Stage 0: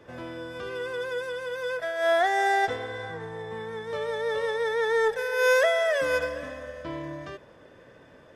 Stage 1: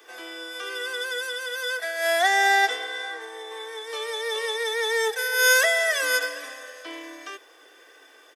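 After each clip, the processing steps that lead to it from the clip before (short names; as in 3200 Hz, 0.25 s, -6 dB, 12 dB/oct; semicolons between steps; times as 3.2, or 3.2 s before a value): steep high-pass 270 Hz 96 dB/oct; tilt +4.5 dB/oct; comb 2.6 ms, depth 59%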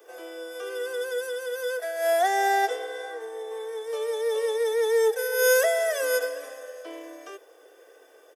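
graphic EQ 250/500/1000/2000/4000/8000 Hz -10/+8/-6/-9/-11/-4 dB; gain +2 dB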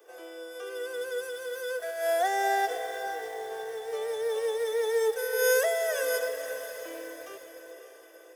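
short-mantissa float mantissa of 4-bit; diffused feedback echo 0.556 s, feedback 51%, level -10.5 dB; lo-fi delay 0.359 s, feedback 55%, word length 6-bit, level -15 dB; gain -4 dB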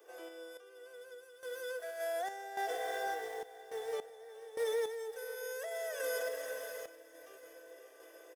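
limiter -24.5 dBFS, peak gain reduction 11 dB; random-step tremolo 3.5 Hz, depth 90%; feedback echo 0.669 s, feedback 47%, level -18 dB; gain -2.5 dB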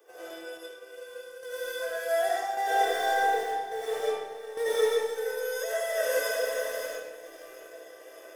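reverb RT60 1.1 s, pre-delay 50 ms, DRR -7.5 dB; in parallel at -8 dB: crossover distortion -47.5 dBFS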